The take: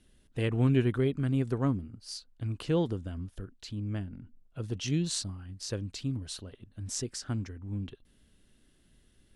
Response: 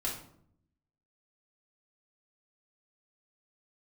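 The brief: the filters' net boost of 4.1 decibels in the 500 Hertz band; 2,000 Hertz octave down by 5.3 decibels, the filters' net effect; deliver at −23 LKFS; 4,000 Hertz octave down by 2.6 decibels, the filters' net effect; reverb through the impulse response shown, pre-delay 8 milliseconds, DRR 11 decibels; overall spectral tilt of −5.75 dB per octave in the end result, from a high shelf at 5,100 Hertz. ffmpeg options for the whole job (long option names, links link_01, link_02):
-filter_complex "[0:a]equalizer=frequency=500:width_type=o:gain=5.5,equalizer=frequency=2000:width_type=o:gain=-7,equalizer=frequency=4000:width_type=o:gain=-5.5,highshelf=frequency=5100:gain=7,asplit=2[link_01][link_02];[1:a]atrim=start_sample=2205,adelay=8[link_03];[link_02][link_03]afir=irnorm=-1:irlink=0,volume=-14.5dB[link_04];[link_01][link_04]amix=inputs=2:normalize=0,volume=8dB"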